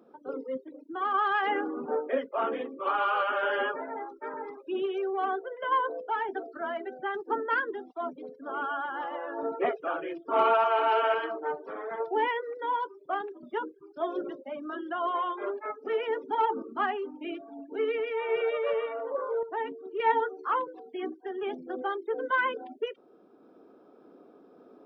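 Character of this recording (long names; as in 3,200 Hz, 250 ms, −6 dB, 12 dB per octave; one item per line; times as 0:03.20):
sample-and-hold tremolo, depth 55%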